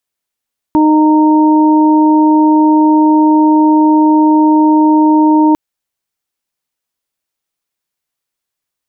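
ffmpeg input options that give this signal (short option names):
-f lavfi -i "aevalsrc='0.501*sin(2*PI*308*t)+0.0794*sin(2*PI*616*t)+0.251*sin(2*PI*924*t)':d=4.8:s=44100"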